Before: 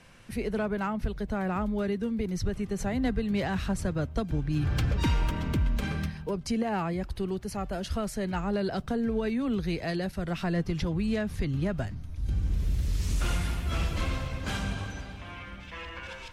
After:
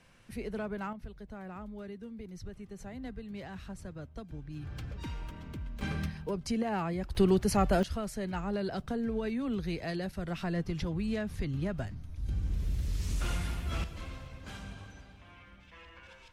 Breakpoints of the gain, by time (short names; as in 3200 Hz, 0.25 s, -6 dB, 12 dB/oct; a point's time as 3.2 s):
-7 dB
from 0.93 s -14 dB
from 5.81 s -3 dB
from 7.15 s +7 dB
from 7.83 s -4.5 dB
from 13.84 s -12.5 dB